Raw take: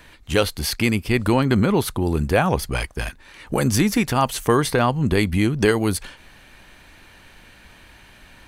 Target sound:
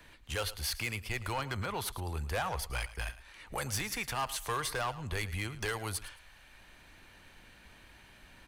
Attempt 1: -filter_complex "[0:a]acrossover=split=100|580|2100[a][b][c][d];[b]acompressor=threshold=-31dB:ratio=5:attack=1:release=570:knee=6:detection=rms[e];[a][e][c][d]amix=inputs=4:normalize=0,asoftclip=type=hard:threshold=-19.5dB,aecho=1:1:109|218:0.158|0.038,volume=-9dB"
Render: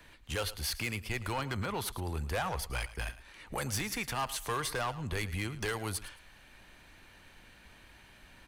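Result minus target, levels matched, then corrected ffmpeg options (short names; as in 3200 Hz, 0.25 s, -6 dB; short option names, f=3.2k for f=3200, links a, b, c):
compressor: peak gain reduction -7 dB
-filter_complex "[0:a]acrossover=split=100|580|2100[a][b][c][d];[b]acompressor=threshold=-40dB:ratio=5:attack=1:release=570:knee=6:detection=rms[e];[a][e][c][d]amix=inputs=4:normalize=0,asoftclip=type=hard:threshold=-19.5dB,aecho=1:1:109|218:0.158|0.038,volume=-9dB"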